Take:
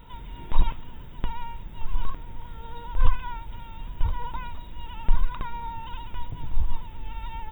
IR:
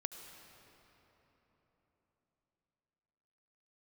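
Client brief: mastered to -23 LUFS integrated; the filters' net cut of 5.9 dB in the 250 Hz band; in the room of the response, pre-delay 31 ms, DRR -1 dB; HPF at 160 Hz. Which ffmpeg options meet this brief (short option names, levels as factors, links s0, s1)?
-filter_complex "[0:a]highpass=160,equalizer=f=250:t=o:g=-6.5,asplit=2[s0][s1];[1:a]atrim=start_sample=2205,adelay=31[s2];[s1][s2]afir=irnorm=-1:irlink=0,volume=1.33[s3];[s0][s3]amix=inputs=2:normalize=0,volume=5.01"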